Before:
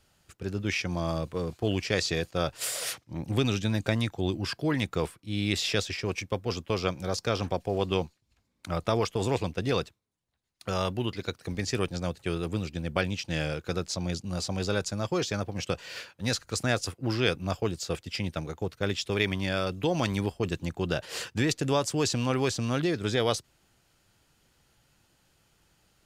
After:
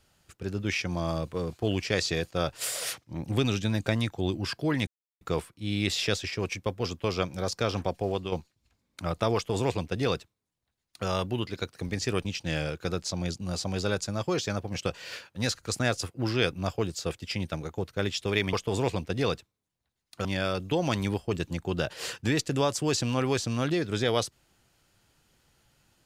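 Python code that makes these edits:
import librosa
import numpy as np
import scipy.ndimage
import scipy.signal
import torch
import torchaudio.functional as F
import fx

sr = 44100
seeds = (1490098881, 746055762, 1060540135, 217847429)

y = fx.edit(x, sr, fx.insert_silence(at_s=4.87, length_s=0.34),
    fx.fade_out_to(start_s=7.72, length_s=0.26, floor_db=-9.5),
    fx.duplicate(start_s=9.01, length_s=1.72, to_s=19.37),
    fx.cut(start_s=11.91, length_s=1.18), tone=tone)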